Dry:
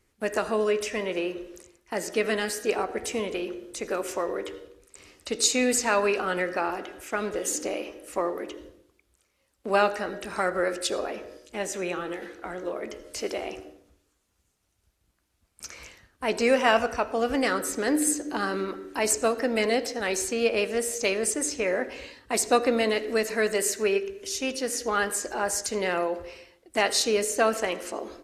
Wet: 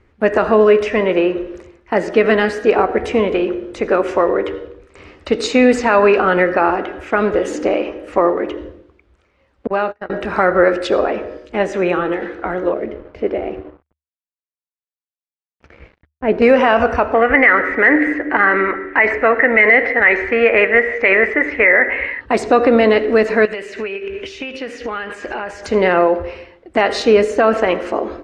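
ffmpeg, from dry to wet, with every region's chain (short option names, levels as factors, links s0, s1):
-filter_complex "[0:a]asettb=1/sr,asplit=3[s0][s1][s2];[s0]atrim=end=9.674[s3];[s1]atrim=start=9.67:end=10.1,asetpts=PTS-STARTPTS,afade=t=in:d=0.004:c=qsin,afade=t=out:st=0.426:d=0.004:c=qsin,agate=range=0.00631:threshold=0.0355:ratio=16:release=100:detection=peak,acompressor=threshold=0.0158:ratio=2:attack=3.2:release=140:knee=1:detection=peak[s4];[s2]atrim=start=10.096[s5];[s3][s4]acrossfade=d=0.004:c1=hsin:c2=qsin[s6];[s6][s5]acrossfade=d=0.004:c1=qsin:c2=hsin,asettb=1/sr,asplit=3[s7][s8][s9];[s7]atrim=end=12.744[s10];[s8]atrim=start=12.74:end=16.42,asetpts=PTS-STARTPTS,afade=t=in:d=0.004:c=qsin,afade=t=out:st=3.676:d=0.004:c=qsin,lowpass=1800,equalizer=f=1100:t=o:w=0.99:g=-13,aeval=exprs='sgn(val(0))*max(abs(val(0))-0.00178,0)':c=same[s11];[s9]atrim=start=16.416[s12];[s10][s11]acrossfade=d=0.004:c1=hsin:c2=qsin[s13];[s13][s12]acrossfade=d=0.004:c1=qsin:c2=hsin,asettb=1/sr,asplit=3[s14][s15][s16];[s14]atrim=end=17.144[s17];[s15]atrim=start=17.14:end=22.21,asetpts=PTS-STARTPTS,afade=t=in:d=0.004:c=qsin,afade=t=out:st=5.066:d=0.004:c=qsin,lowpass=f=2000:t=q:w=9.4,equalizer=f=140:w=0.62:g=-9[s18];[s16]atrim=start=22.206[s19];[s17][s18]acrossfade=d=0.004:c1=hsin:c2=qsin[s20];[s20][s19]acrossfade=d=0.004:c1=qsin:c2=hsin,asettb=1/sr,asplit=3[s21][s22][s23];[s21]atrim=end=23.454[s24];[s22]atrim=start=23.45:end=25.63,asetpts=PTS-STARTPTS,afade=t=in:d=0.004:c=qsin,afade=t=out:st=2.176:d=0.004:c=qsin,equalizer=f=2600:t=o:w=1.1:g=12,acompressor=threshold=0.02:ratio=10:attack=3.2:release=140:knee=1:detection=peak[s25];[s23]atrim=start=25.626[s26];[s24][s25]acrossfade=d=0.004:c1=hsin:c2=qsin[s27];[s27][s26]acrossfade=d=0.004:c1=qsin:c2=hsin,lowpass=2100,equalizer=f=75:t=o:w=0.26:g=7.5,alimiter=level_in=5.96:limit=0.891:release=50:level=0:latency=1,volume=0.891"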